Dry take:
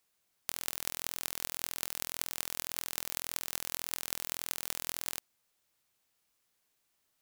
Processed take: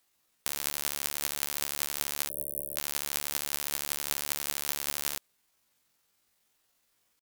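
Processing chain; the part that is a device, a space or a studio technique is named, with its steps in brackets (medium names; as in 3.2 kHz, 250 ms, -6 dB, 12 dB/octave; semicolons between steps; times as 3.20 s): 2.30–2.79 s: Chebyshev band-stop 340–5200 Hz, order 5; chipmunk voice (pitch shift +9.5 st); trim +7.5 dB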